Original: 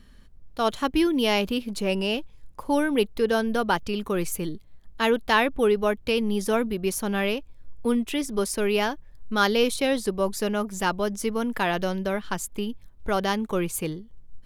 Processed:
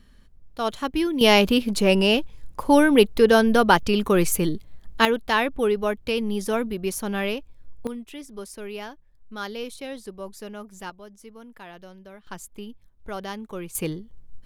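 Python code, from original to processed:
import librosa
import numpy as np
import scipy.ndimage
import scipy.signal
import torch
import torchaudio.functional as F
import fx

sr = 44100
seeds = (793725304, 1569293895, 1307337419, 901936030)

y = fx.gain(x, sr, db=fx.steps((0.0, -2.0), (1.21, 7.0), (5.05, -1.0), (7.87, -11.5), (10.9, -18.0), (12.27, -8.5), (13.75, 1.5)))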